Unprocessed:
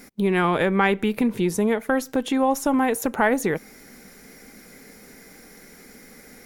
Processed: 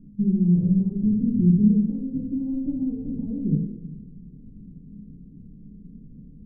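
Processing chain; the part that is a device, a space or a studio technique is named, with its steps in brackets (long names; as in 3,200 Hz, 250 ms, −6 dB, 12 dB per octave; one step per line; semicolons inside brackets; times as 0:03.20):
club heard from the street (brickwall limiter −16.5 dBFS, peak gain reduction 10 dB; low-pass filter 200 Hz 24 dB per octave; convolution reverb RT60 1.0 s, pre-delay 4 ms, DRR −3.5 dB)
level +6 dB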